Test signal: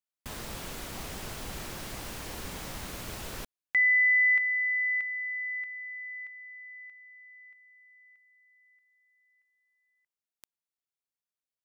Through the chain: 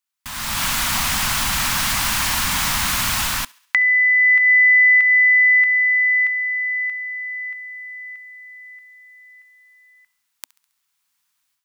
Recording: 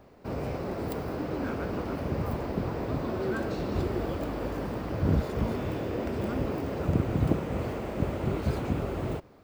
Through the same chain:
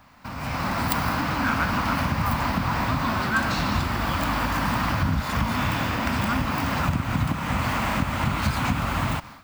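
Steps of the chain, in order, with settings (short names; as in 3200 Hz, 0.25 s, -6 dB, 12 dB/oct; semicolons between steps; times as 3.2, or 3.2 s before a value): compressor 6:1, threshold -35 dBFS; EQ curve 260 Hz 0 dB, 400 Hz -18 dB, 980 Hz +9 dB; on a send: thinning echo 68 ms, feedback 51%, high-pass 580 Hz, level -23.5 dB; on the sum: AGC gain up to 14 dB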